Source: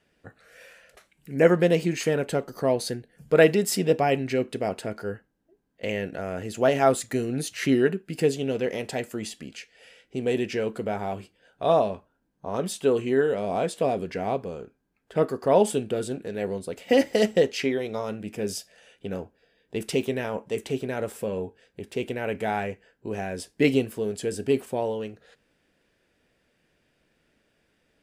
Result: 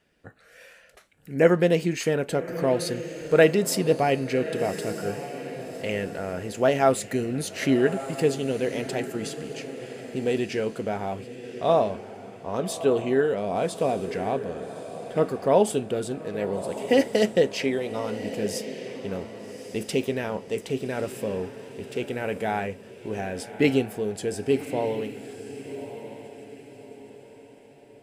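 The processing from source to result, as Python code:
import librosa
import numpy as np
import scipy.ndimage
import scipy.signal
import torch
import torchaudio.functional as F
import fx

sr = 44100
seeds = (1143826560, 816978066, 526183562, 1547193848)

y = fx.echo_diffused(x, sr, ms=1189, feedback_pct=40, wet_db=-11.5)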